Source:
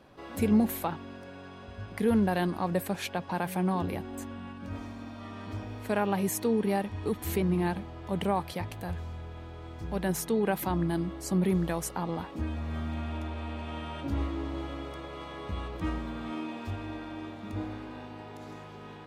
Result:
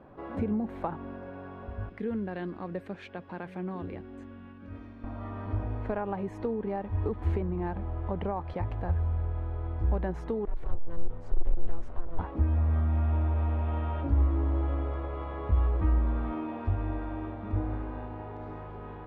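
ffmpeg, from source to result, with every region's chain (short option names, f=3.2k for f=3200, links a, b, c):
-filter_complex "[0:a]asettb=1/sr,asplit=3[a][b][c];[a]atrim=end=1.894[d];[b]atrim=start=1.89:end=5.04,asetpts=PTS-STARTPTS,afade=t=in:d=0.004:c=qsin,afade=t=out:st=3.146:d=0.004:c=qsin,highpass=f=360:p=1,equalizer=f=840:t=o:w=1.5:g=-14.5[e];[c]atrim=start=5.036[f];[d][e]acrossfade=d=0.004:c1=hsin:c2=qsin[g];[g][f]acrossfade=d=0.004:c1=qsin:c2=hsin,asettb=1/sr,asplit=3[h][i][j];[h]atrim=end=10.454[k];[i]atrim=start=10.45:end=12.19,asetpts=PTS-STARTPTS,afade=t=in:d=0.004:c=qsin,afade=t=out:st=1.736:d=0.004:c=qsin,aeval=exprs='val(0)*sin(2*PI*170*n/s)':c=same,acrossover=split=130|3000[l][m][n];[m]acompressor=threshold=-46dB:ratio=2:attack=3.2:release=140:knee=2.83:detection=peak[o];[l][o][n]amix=inputs=3:normalize=0,aeval=exprs='(tanh(100*val(0)+0.4)-tanh(0.4))/100':c=same[p];[j]atrim=start=12.186[q];[k][p]acrossfade=d=0.004:c1=hsin:c2=qsin[r];[r][q]acrossfade=d=0.004:c1=qsin:c2=hsin,acompressor=threshold=-31dB:ratio=6,asubboost=boost=9.5:cutoff=51,lowpass=1.3k,volume=4.5dB"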